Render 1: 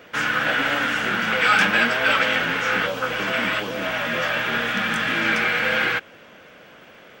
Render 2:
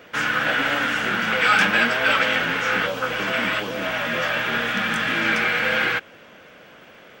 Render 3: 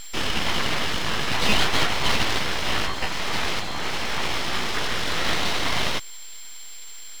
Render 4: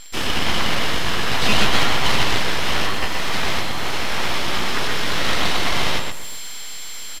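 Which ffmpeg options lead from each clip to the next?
-af anull
-af "aeval=exprs='val(0)+0.0355*sin(2*PI*3700*n/s)':c=same,aemphasis=mode=reproduction:type=75kf,aeval=exprs='abs(val(0))':c=same,volume=2dB"
-filter_complex "[0:a]asplit=2[a][b];[b]adelay=124,lowpass=f=4.3k:p=1,volume=-3dB,asplit=2[c][d];[d]adelay=124,lowpass=f=4.3k:p=1,volume=0.33,asplit=2[e][f];[f]adelay=124,lowpass=f=4.3k:p=1,volume=0.33,asplit=2[g][h];[h]adelay=124,lowpass=f=4.3k:p=1,volume=0.33[i];[a][c][e][g][i]amix=inputs=5:normalize=0,asplit=2[j][k];[k]acrusher=bits=4:mix=0:aa=0.000001,volume=-5dB[l];[j][l]amix=inputs=2:normalize=0,aresample=32000,aresample=44100,volume=-2dB"

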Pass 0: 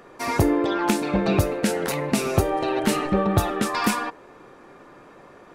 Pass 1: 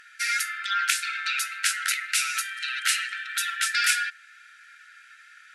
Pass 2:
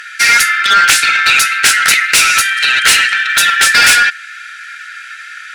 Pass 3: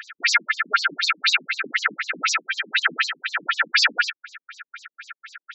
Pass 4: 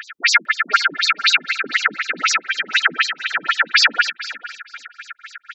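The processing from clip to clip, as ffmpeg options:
-af "afftfilt=real='re*between(b*sr/4096,1300,12000)':imag='im*between(b*sr/4096,1300,12000)':win_size=4096:overlap=0.75,volume=6dB"
-filter_complex "[0:a]asplit=2[a][b];[b]highpass=f=720:p=1,volume=19dB,asoftclip=type=tanh:threshold=-3.5dB[c];[a][c]amix=inputs=2:normalize=0,lowpass=f=7.8k:p=1,volume=-6dB,acontrast=89,volume=1dB"
-af "afftfilt=real='re*between(b*sr/1024,220*pow(5700/220,0.5+0.5*sin(2*PI*4*pts/sr))/1.41,220*pow(5700/220,0.5+0.5*sin(2*PI*4*pts/sr))*1.41)':imag='im*between(b*sr/1024,220*pow(5700/220,0.5+0.5*sin(2*PI*4*pts/sr))/1.41,220*pow(5700/220,0.5+0.5*sin(2*PI*4*pts/sr))*1.41)':win_size=1024:overlap=0.75,volume=-3.5dB"
-af "aecho=1:1:452|904:0.15|0.0239,volume=4.5dB"

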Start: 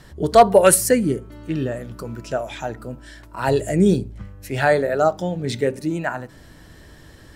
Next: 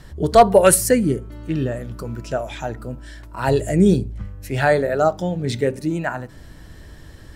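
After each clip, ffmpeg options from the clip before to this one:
-af "lowshelf=f=99:g=8.5"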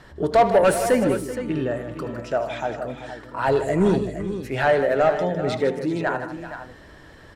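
-filter_complex "[0:a]asplit=2[a][b];[b]highpass=f=720:p=1,volume=18dB,asoftclip=type=tanh:threshold=-1dB[c];[a][c]amix=inputs=2:normalize=0,lowpass=f=1.4k:p=1,volume=-6dB,asplit=2[d][e];[e]aecho=0:1:77|156|382|467:0.188|0.266|0.188|0.282[f];[d][f]amix=inputs=2:normalize=0,volume=-6.5dB"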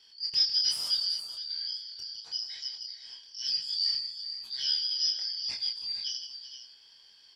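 -af "afftfilt=real='real(if(lt(b,272),68*(eq(floor(b/68),0)*3+eq(floor(b/68),1)*2+eq(floor(b/68),2)*1+eq(floor(b/68),3)*0)+mod(b,68),b),0)':imag='imag(if(lt(b,272),68*(eq(floor(b/68),0)*3+eq(floor(b/68),1)*2+eq(floor(b/68),2)*1+eq(floor(b/68),3)*0)+mod(b,68),b),0)':win_size=2048:overlap=0.75,flanger=delay=22.5:depth=4:speed=1.1,volume=-8dB"

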